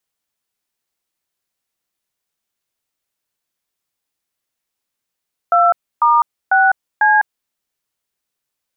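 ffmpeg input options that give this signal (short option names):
-f lavfi -i "aevalsrc='0.266*clip(min(mod(t,0.497),0.203-mod(t,0.497))/0.002,0,1)*(eq(floor(t/0.497),0)*(sin(2*PI*697*mod(t,0.497))+sin(2*PI*1336*mod(t,0.497)))+eq(floor(t/0.497),1)*(sin(2*PI*941*mod(t,0.497))+sin(2*PI*1209*mod(t,0.497)))+eq(floor(t/0.497),2)*(sin(2*PI*770*mod(t,0.497))+sin(2*PI*1477*mod(t,0.497)))+eq(floor(t/0.497),3)*(sin(2*PI*852*mod(t,0.497))+sin(2*PI*1633*mod(t,0.497))))':d=1.988:s=44100"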